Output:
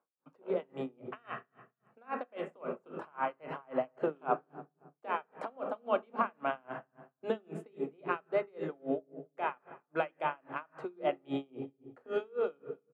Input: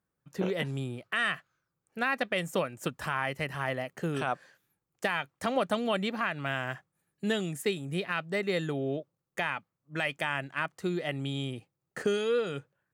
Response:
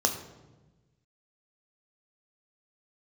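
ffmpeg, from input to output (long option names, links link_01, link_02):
-filter_complex "[0:a]lowpass=9600,acrossover=split=220 2700:gain=0.1 1 0.0794[link_01][link_02][link_03];[link_01][link_02][link_03]amix=inputs=3:normalize=0,acompressor=threshold=-34dB:ratio=3,asplit=2[link_04][link_05];[link_05]adelay=280,lowpass=frequency=2500:poles=1,volume=-20.5dB,asplit=2[link_06][link_07];[link_07]adelay=280,lowpass=frequency=2500:poles=1,volume=0.27[link_08];[link_04][link_06][link_08]amix=inputs=3:normalize=0,asplit=2[link_09][link_10];[1:a]atrim=start_sample=2205,lowpass=2100[link_11];[link_10][link_11]afir=irnorm=-1:irlink=0,volume=-6.5dB[link_12];[link_09][link_12]amix=inputs=2:normalize=0,aeval=exprs='val(0)*pow(10,-34*(0.5-0.5*cos(2*PI*3.7*n/s))/20)':channel_layout=same,volume=2dB"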